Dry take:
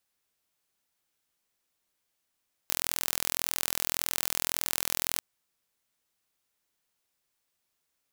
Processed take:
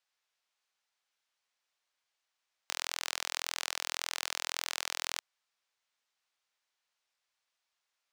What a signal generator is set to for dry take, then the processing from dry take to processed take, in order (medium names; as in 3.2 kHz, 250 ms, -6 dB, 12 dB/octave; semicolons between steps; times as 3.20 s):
pulse train 41.8 per s, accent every 0, -1.5 dBFS 2.49 s
three-band isolator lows -19 dB, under 570 Hz, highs -18 dB, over 6.9 kHz